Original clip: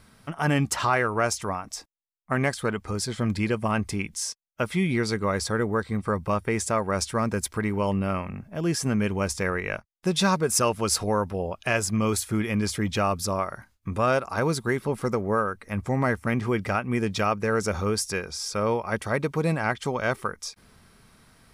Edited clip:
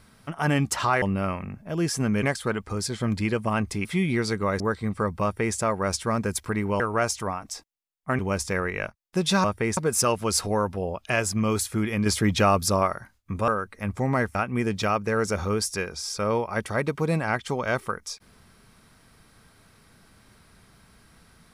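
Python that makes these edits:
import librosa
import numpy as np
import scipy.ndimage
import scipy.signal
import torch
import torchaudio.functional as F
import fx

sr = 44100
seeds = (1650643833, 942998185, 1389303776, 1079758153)

y = fx.edit(x, sr, fx.swap(start_s=1.02, length_s=1.39, other_s=7.88, other_length_s=1.21),
    fx.cut(start_s=4.03, length_s=0.63),
    fx.cut(start_s=5.41, length_s=0.27),
    fx.duplicate(start_s=6.31, length_s=0.33, to_s=10.34),
    fx.clip_gain(start_s=12.63, length_s=0.89, db=4.5),
    fx.cut(start_s=14.05, length_s=1.32),
    fx.cut(start_s=16.24, length_s=0.47), tone=tone)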